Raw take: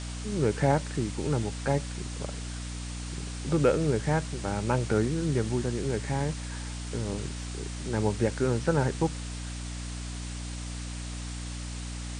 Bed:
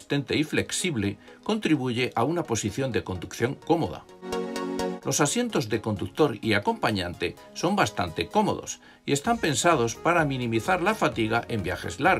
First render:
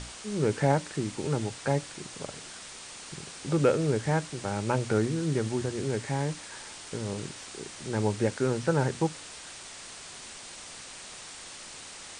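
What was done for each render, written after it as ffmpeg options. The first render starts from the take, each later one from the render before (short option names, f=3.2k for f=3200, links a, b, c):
-af "bandreject=f=60:t=h:w=6,bandreject=f=120:t=h:w=6,bandreject=f=180:t=h:w=6,bandreject=f=240:t=h:w=6,bandreject=f=300:t=h:w=6"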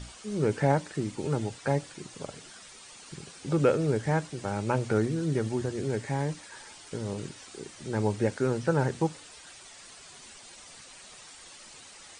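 -af "afftdn=nr=9:nf=-45"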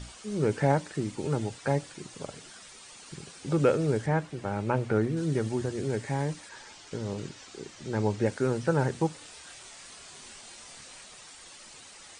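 -filter_complex "[0:a]asettb=1/sr,asplit=3[a][b][c];[a]atrim=end=4.064[d];[b]atrim=start=4.06:end=5.17,asetpts=PTS-STARTPTS,afade=t=in:d=0.004:c=qsin,afade=t=out:st=1.106:d=0.004:c=qsin,acrossover=split=3200[e][f];[f]acompressor=threshold=-57dB:ratio=4:attack=1:release=60[g];[e][g]amix=inputs=2:normalize=0[h];[c]atrim=start=5.166[i];[d][h]acrossfade=d=0.004:c1=hsin:c2=qsin[j];[j][i]acrossfade=d=0.004:c1=qsin:c2=hsin,asettb=1/sr,asplit=3[k][l][m];[k]atrim=end=6.494[n];[l]atrim=start=6.49:end=8.26,asetpts=PTS-STARTPTS,afade=t=in:d=0.004:c=qsin,afade=t=out:st=1.766:d=0.004:c=qsin,lowpass=f=7.7k:w=0.5412,lowpass=f=7.7k:w=1.3066[o];[m]atrim=start=8.256[p];[n][o]acrossfade=d=0.004:c1=hsin:c2=qsin[q];[q][p]acrossfade=d=0.004:c1=qsin:c2=hsin,asettb=1/sr,asplit=3[r][s][t];[r]atrim=end=9.184[u];[s]atrim=start=9.18:end=11.04,asetpts=PTS-STARTPTS,afade=t=in:d=0.004:c=qsin,afade=t=out:st=1.856:d=0.004:c=qsin,asplit=2[v][w];[w]adelay=27,volume=-4dB[x];[v][x]amix=inputs=2:normalize=0,atrim=end_sample=82026[y];[t]atrim=start=11.036[z];[u][y]acrossfade=d=0.004:c1=hsin:c2=qsin[aa];[aa][z]acrossfade=d=0.004:c1=qsin:c2=hsin"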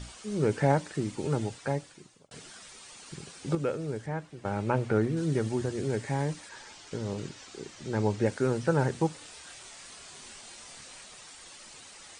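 -filter_complex "[0:a]asplit=4[a][b][c][d];[a]atrim=end=2.31,asetpts=PTS-STARTPTS,afade=t=out:st=1.44:d=0.87[e];[b]atrim=start=2.31:end=3.552,asetpts=PTS-STARTPTS,afade=t=in:d=0.004:c=hsin[f];[c]atrim=start=3.548:end=4.452,asetpts=PTS-STARTPTS,volume=-7.5dB[g];[d]atrim=start=4.448[h];[e][f]concat=n=2:v=0:a=1[i];[i][g]acrossfade=d=0.004:c1=hsin:c2=hsin[j];[j][h]acrossfade=d=0.004:c1=hsin:c2=hsin"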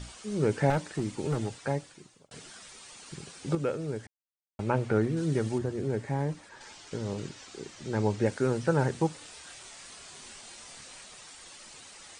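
-filter_complex "[0:a]asettb=1/sr,asplit=3[a][b][c];[a]atrim=end=0.704[d];[b]atrim=start=0.7:end=1.55,asetpts=PTS-STARTPTS,afade=t=in:d=0.004:c=qsin,afade=t=out:st=0.846:d=0.004:c=qsin,asoftclip=type=hard:threshold=-23dB[e];[c]atrim=start=1.546[f];[d][e]acrossfade=d=0.004:c1=hsin:c2=qsin[g];[g][f]acrossfade=d=0.004:c1=qsin:c2=hsin,asettb=1/sr,asplit=3[h][i][j];[h]atrim=end=5.584[k];[i]atrim=start=5.58:end=6.61,asetpts=PTS-STARTPTS,afade=t=in:d=0.004:c=qsin,afade=t=out:st=1.026:d=0.004:c=qsin,highshelf=f=2.1k:g=-9.5[l];[j]atrim=start=6.606[m];[k][l]acrossfade=d=0.004:c1=hsin:c2=qsin[n];[n][m]acrossfade=d=0.004:c1=qsin:c2=hsin,asplit=3[o][p][q];[o]atrim=end=4.07,asetpts=PTS-STARTPTS,afade=t=out:st=4.066:d=0.004:c=hsin[r];[p]atrim=start=4.07:end=4.59,asetpts=PTS-STARTPTS,volume=0[s];[q]atrim=start=4.59,asetpts=PTS-STARTPTS,afade=t=in:d=0.004:c=hsin[t];[r][s][t]concat=n=3:v=0:a=1"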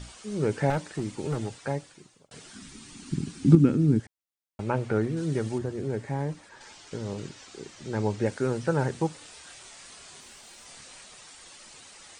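-filter_complex "[0:a]asettb=1/sr,asplit=3[a][b][c];[a]atrim=end=2.534[d];[b]atrim=start=2.53:end=4,asetpts=PTS-STARTPTS,afade=t=in:d=0.004:c=qsin,afade=t=out:st=1.466:d=0.004:c=qsin,lowshelf=f=380:t=q:w=3:g=12[e];[c]atrim=start=3.996[f];[d][e]acrossfade=d=0.004:c1=hsin:c2=qsin[g];[g][f]acrossfade=d=0.004:c1=qsin:c2=hsin,asettb=1/sr,asplit=3[h][i][j];[h]atrim=end=10.204[k];[i]atrim=start=10.2:end=10.66,asetpts=PTS-STARTPTS,afade=t=in:d=0.004:c=qsin,afade=t=out:st=0.456:d=0.004:c=qsin,aeval=exprs='(tanh(100*val(0)+0.3)-tanh(0.3))/100':c=same[l];[j]atrim=start=10.656[m];[k][l]acrossfade=d=0.004:c1=hsin:c2=qsin[n];[n][m]acrossfade=d=0.004:c1=qsin:c2=hsin"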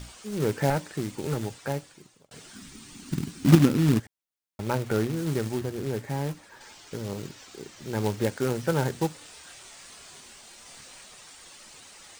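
-af "acrusher=bits=3:mode=log:mix=0:aa=0.000001"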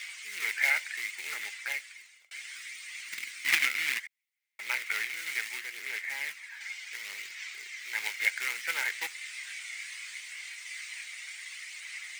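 -af "aphaser=in_gain=1:out_gain=1:delay=1.4:decay=0.24:speed=0.67:type=sinusoidal,highpass=f=2.1k:t=q:w=8.8"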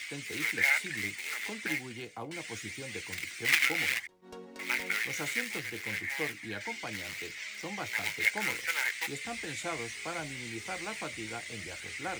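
-filter_complex "[1:a]volume=-17dB[a];[0:a][a]amix=inputs=2:normalize=0"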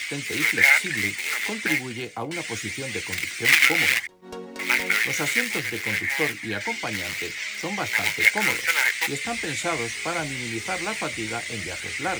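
-af "volume=10dB,alimiter=limit=-1dB:level=0:latency=1"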